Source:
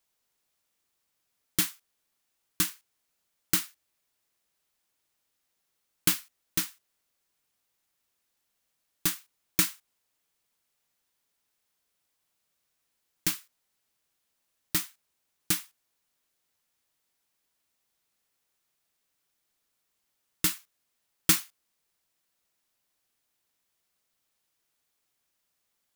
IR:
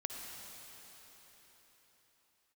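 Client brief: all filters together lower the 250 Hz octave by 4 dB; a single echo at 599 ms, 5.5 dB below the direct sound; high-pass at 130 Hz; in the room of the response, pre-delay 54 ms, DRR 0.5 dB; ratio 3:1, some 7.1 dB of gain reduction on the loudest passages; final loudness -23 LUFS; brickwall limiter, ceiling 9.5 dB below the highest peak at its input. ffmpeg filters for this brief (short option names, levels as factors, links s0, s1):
-filter_complex "[0:a]highpass=130,equalizer=f=250:t=o:g=-5.5,acompressor=threshold=0.0501:ratio=3,alimiter=limit=0.126:level=0:latency=1,aecho=1:1:599:0.531,asplit=2[s0][s1];[1:a]atrim=start_sample=2205,adelay=54[s2];[s1][s2]afir=irnorm=-1:irlink=0,volume=0.891[s3];[s0][s3]amix=inputs=2:normalize=0,volume=5.01"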